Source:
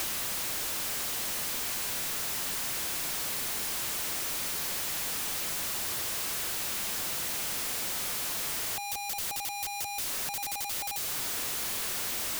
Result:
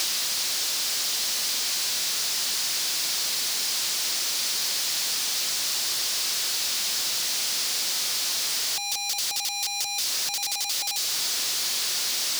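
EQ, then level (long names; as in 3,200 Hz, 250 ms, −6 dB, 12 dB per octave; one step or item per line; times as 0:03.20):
high-pass filter 220 Hz 6 dB per octave
parametric band 4,800 Hz +14 dB 1.5 octaves
0.0 dB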